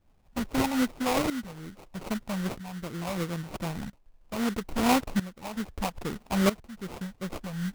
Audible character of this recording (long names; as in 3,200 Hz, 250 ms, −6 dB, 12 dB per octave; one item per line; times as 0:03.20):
a quantiser's noise floor 12 bits, dither triangular
tremolo saw up 0.77 Hz, depth 85%
phaser sweep stages 12, 2.5 Hz, lowest notch 350–1,600 Hz
aliases and images of a low sample rate 1,700 Hz, jitter 20%